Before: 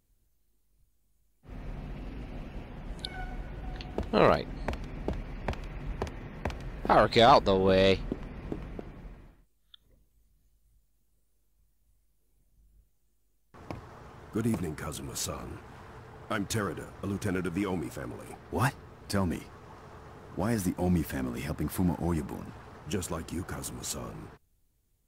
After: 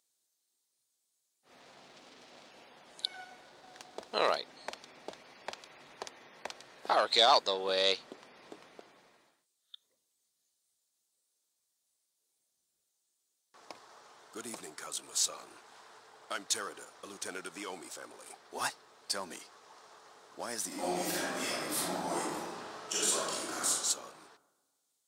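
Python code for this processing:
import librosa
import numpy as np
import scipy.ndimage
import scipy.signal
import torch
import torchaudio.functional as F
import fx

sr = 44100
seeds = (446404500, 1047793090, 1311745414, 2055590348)

y = fx.self_delay(x, sr, depth_ms=0.45, at=(1.6, 2.51))
y = fx.running_max(y, sr, window=9, at=(3.44, 4.14))
y = fx.reverb_throw(y, sr, start_s=20.67, length_s=3.02, rt60_s=1.4, drr_db=-9.0)
y = scipy.signal.sosfilt(scipy.signal.butter(2, 560.0, 'highpass', fs=sr, output='sos'), y)
y = fx.band_shelf(y, sr, hz=5700.0, db=9.5, octaves=1.7)
y = y * librosa.db_to_amplitude(-4.5)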